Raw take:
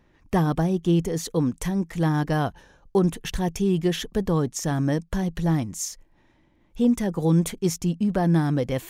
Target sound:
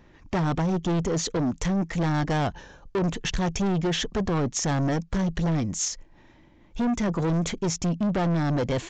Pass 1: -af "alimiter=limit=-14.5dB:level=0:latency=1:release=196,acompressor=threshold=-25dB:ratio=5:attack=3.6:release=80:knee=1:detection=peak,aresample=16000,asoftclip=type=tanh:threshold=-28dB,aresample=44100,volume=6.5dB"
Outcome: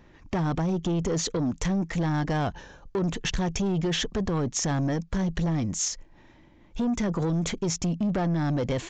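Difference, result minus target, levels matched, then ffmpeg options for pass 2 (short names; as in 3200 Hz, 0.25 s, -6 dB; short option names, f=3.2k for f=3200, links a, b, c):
compressor: peak gain reduction +7 dB
-af "alimiter=limit=-14.5dB:level=0:latency=1:release=196,aresample=16000,asoftclip=type=tanh:threshold=-28dB,aresample=44100,volume=6.5dB"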